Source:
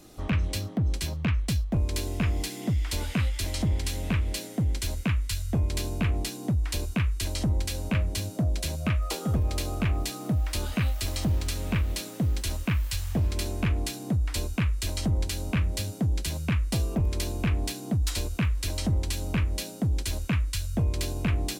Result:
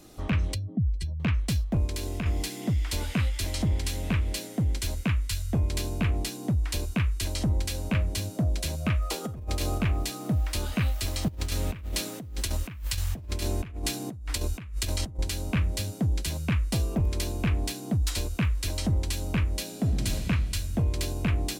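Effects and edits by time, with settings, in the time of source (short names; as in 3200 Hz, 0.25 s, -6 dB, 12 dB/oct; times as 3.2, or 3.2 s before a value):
0.54–1.2 spectral contrast raised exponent 1.9
1.86–2.26 compressor, threshold -27 dBFS
9.24–9.78 negative-ratio compressor -29 dBFS, ratio -0.5
11.28–15.19 negative-ratio compressor -30 dBFS, ratio -0.5
19.62–20.12 reverb throw, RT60 3 s, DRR 3 dB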